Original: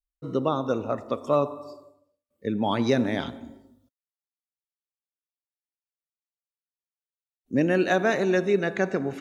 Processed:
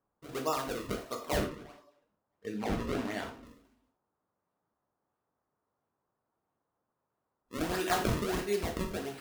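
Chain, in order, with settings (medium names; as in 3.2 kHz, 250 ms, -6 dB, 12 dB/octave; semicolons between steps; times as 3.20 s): peaking EQ 170 Hz -11.5 dB 2.7 oct; band-stop 550 Hz, Q 12; decimation with a swept rate 33×, swing 160% 1.5 Hz; 1.37–3.45 s: treble shelf 5.6 kHz -11.5 dB; gated-style reverb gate 130 ms falling, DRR 1.5 dB; band noise 75–1200 Hz -79 dBFS; trim -5.5 dB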